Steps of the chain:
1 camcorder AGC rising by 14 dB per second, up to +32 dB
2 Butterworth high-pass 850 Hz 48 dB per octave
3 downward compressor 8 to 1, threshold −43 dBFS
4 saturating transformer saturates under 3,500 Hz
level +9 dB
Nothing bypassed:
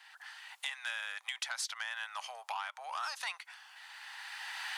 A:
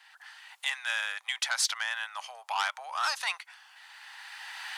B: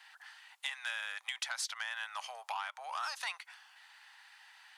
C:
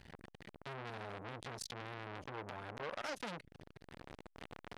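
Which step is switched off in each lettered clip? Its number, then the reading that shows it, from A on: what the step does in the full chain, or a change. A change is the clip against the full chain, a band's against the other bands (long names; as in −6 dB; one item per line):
3, average gain reduction 3.5 dB
1, change in momentary loudness spread +8 LU
2, 500 Hz band +19.5 dB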